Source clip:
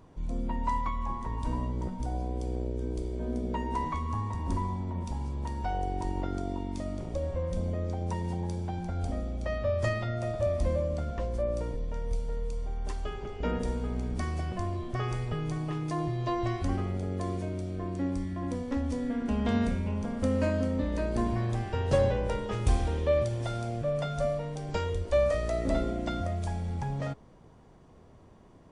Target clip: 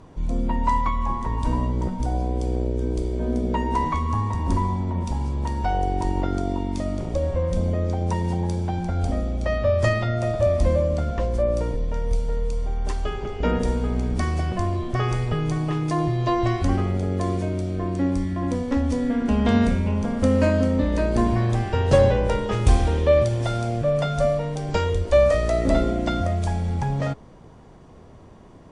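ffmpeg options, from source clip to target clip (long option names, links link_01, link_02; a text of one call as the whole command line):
ffmpeg -i in.wav -af "lowpass=11000,volume=8.5dB" out.wav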